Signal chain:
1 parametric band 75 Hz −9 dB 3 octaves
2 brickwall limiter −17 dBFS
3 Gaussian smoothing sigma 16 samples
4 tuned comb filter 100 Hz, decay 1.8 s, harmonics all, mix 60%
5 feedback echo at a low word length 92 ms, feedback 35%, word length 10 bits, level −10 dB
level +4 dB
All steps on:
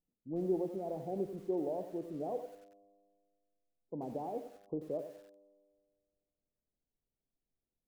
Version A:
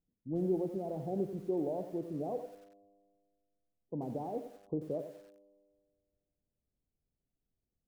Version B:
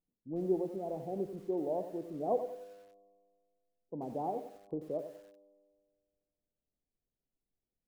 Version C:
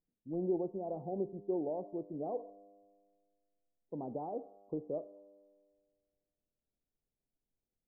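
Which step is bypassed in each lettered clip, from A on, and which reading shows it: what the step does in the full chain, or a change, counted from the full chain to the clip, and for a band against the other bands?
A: 1, 125 Hz band +5.0 dB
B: 2, 1 kHz band +4.0 dB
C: 5, change in momentary loudness spread −3 LU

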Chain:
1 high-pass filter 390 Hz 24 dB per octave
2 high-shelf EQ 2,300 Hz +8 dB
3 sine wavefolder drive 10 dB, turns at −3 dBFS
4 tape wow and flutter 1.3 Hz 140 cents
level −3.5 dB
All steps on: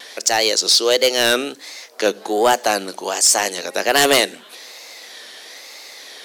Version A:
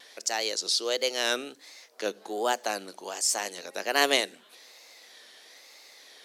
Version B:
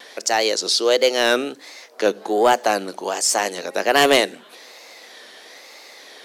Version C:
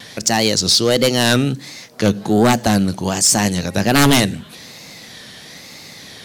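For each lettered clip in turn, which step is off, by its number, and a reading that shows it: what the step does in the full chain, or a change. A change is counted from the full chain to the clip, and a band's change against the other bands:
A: 3, distortion level −8 dB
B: 2, 8 kHz band −5.5 dB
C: 1, change in crest factor −2.0 dB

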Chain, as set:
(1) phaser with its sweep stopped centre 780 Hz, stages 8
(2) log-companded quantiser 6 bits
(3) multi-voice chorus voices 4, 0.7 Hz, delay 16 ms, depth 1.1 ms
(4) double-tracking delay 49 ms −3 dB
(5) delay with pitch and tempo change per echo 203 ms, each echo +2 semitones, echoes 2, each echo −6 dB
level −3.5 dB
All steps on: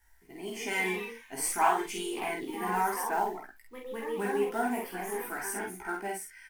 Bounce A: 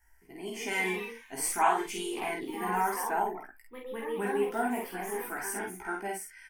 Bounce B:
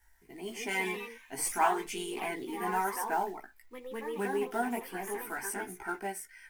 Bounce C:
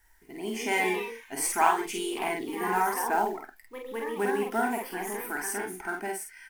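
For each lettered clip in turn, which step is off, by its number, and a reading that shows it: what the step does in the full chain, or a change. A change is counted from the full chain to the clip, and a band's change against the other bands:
2, distortion level −25 dB
4, change in integrated loudness −2.0 LU
3, 125 Hz band −2.5 dB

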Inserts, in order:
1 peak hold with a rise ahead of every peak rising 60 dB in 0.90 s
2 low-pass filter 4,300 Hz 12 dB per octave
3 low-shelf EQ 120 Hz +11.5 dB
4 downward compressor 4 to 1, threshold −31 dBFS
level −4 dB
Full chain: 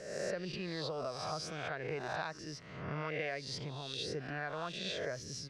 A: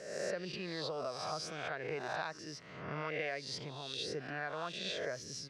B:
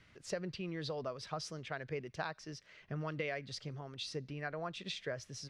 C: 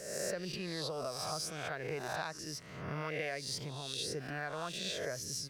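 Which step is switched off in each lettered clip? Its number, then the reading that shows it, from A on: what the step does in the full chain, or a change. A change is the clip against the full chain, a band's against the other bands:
3, 125 Hz band −4.5 dB
1, 125 Hz band +3.0 dB
2, 8 kHz band +8.0 dB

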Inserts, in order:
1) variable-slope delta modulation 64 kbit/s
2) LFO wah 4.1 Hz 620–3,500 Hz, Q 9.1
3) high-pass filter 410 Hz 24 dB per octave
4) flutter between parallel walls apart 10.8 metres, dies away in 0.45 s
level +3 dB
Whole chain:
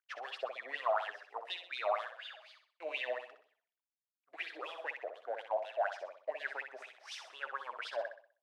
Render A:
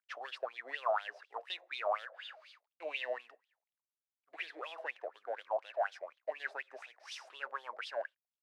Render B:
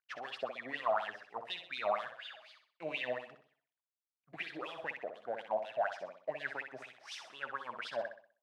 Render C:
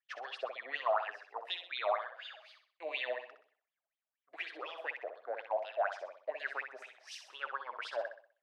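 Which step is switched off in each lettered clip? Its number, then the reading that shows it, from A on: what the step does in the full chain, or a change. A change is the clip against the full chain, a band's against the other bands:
4, echo-to-direct ratio −7.5 dB to none audible
3, 250 Hz band +11.0 dB
1, change in momentary loudness spread +1 LU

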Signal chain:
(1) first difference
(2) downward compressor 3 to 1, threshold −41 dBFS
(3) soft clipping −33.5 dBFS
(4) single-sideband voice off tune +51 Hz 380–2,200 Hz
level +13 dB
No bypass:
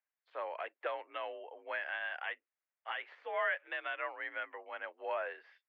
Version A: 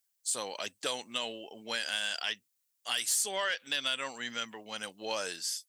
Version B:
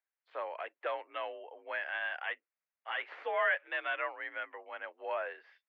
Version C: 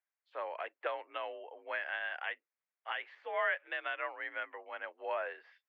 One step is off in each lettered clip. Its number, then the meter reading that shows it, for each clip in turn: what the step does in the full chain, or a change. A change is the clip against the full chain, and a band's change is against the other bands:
4, 4 kHz band +18.0 dB
2, average gain reduction 2.0 dB
3, distortion level −19 dB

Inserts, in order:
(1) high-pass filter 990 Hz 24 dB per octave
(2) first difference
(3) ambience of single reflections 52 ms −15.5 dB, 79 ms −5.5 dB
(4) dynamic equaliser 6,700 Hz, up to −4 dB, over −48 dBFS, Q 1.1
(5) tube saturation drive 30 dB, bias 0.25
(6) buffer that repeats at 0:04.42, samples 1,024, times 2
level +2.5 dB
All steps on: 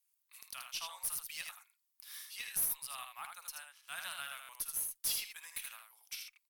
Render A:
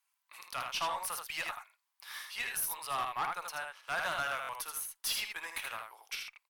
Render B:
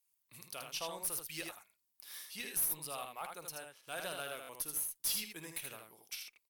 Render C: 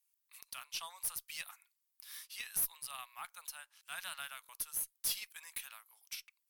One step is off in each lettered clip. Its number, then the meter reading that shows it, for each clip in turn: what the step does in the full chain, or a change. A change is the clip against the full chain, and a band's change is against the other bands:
2, 8 kHz band −12.0 dB
1, 250 Hz band +15.0 dB
3, change in momentary loudness spread +1 LU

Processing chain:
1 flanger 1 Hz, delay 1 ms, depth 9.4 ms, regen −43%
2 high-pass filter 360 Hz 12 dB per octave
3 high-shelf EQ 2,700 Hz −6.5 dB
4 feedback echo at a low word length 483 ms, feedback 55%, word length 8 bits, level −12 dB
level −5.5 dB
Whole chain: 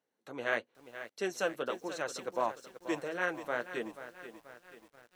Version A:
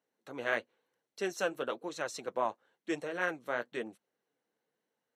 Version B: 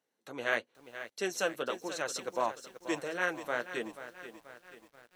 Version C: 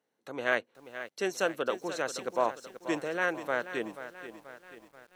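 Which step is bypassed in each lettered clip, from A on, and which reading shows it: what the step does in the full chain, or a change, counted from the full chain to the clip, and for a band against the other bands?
4, change in momentary loudness spread −7 LU
3, 8 kHz band +5.0 dB
1, change in integrated loudness +3.5 LU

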